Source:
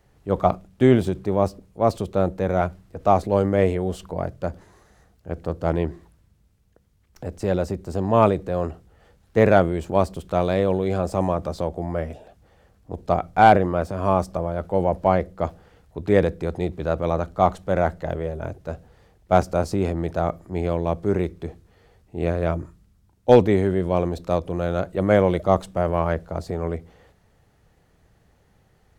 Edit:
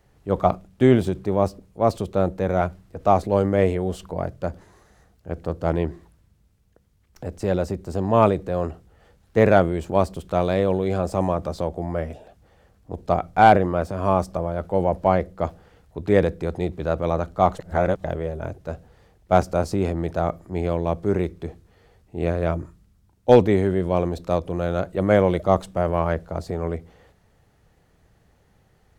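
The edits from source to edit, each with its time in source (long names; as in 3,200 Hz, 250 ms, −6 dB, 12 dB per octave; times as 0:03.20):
0:17.59–0:18.04: reverse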